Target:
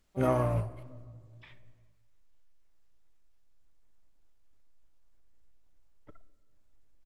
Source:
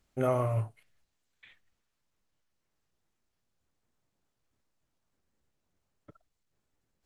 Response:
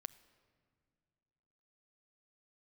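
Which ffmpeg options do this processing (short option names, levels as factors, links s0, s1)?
-filter_complex "[0:a]asubboost=boost=7:cutoff=51,asplit=3[s0][s1][s2];[s1]asetrate=22050,aresample=44100,atempo=2,volume=0.316[s3];[s2]asetrate=66075,aresample=44100,atempo=0.66742,volume=0.2[s4];[s0][s3][s4]amix=inputs=3:normalize=0[s5];[1:a]atrim=start_sample=2205[s6];[s5][s6]afir=irnorm=-1:irlink=0,volume=1.78"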